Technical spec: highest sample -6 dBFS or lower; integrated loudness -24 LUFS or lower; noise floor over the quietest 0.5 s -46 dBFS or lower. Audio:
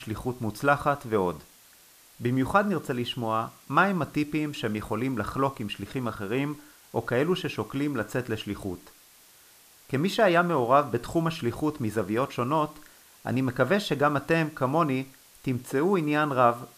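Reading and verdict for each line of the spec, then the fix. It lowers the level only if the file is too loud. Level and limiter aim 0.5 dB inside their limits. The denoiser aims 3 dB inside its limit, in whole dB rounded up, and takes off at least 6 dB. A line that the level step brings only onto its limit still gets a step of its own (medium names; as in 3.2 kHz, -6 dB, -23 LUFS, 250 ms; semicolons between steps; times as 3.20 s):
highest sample -7.5 dBFS: pass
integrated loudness -27.0 LUFS: pass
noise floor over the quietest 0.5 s -55 dBFS: pass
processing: none needed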